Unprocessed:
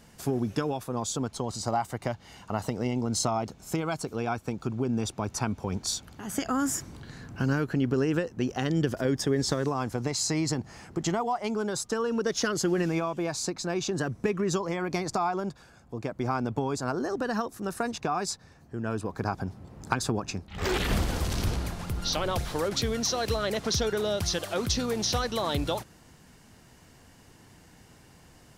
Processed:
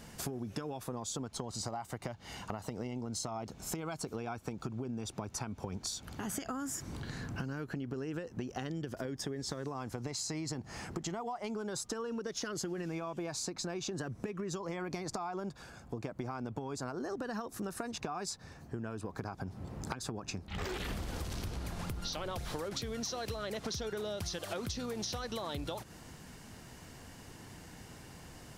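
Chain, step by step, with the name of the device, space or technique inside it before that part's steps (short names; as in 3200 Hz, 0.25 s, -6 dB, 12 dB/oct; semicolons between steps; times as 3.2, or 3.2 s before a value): serial compression, peaks first (compressor, threshold -34 dBFS, peak gain reduction 13 dB; compressor 2.5:1, threshold -41 dBFS, peak gain reduction 8 dB); gain +3.5 dB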